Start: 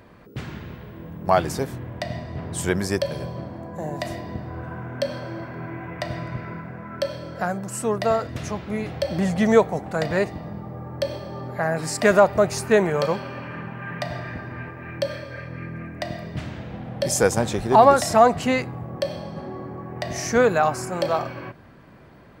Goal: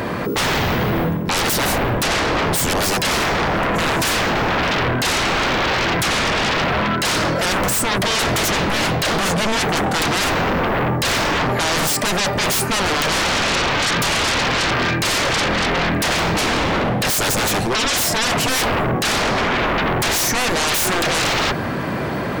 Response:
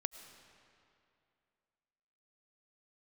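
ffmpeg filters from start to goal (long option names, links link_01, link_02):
-af "highpass=frequency=150:poles=1,areverse,acompressor=threshold=-30dB:ratio=12,areverse,aeval=exprs='0.0794*sin(PI/2*7.94*val(0)/0.0794)':channel_layout=same,volume=6.5dB"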